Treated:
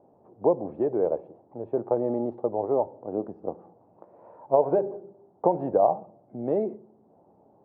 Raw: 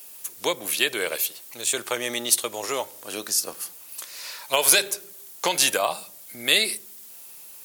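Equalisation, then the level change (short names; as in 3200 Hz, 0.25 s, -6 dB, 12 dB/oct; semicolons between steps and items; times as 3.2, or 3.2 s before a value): Chebyshev low-pass 810 Hz, order 4; low shelf 99 Hz +8 dB; +6.0 dB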